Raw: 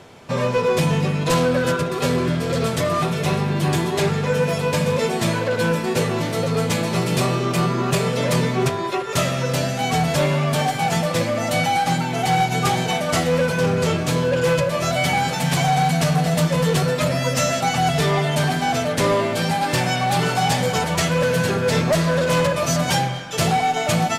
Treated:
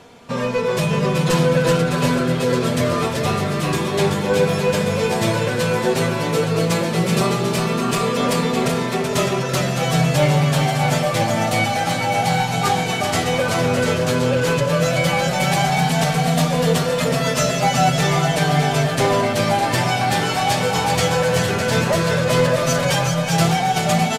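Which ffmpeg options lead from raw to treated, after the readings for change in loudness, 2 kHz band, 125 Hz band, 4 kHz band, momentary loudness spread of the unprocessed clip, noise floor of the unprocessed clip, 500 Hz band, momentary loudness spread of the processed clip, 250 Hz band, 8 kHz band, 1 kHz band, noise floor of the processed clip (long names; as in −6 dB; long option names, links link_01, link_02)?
+1.5 dB, +2.0 dB, +1.5 dB, +2.0 dB, 3 LU, −25 dBFS, +1.5 dB, 3 LU, +1.5 dB, +1.5 dB, +1.5 dB, −23 dBFS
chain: -af "aecho=1:1:380|608|744.8|826.9|876.1:0.631|0.398|0.251|0.158|0.1,flanger=delay=4.2:depth=5.7:regen=37:speed=0.12:shape=sinusoidal,volume=3.5dB"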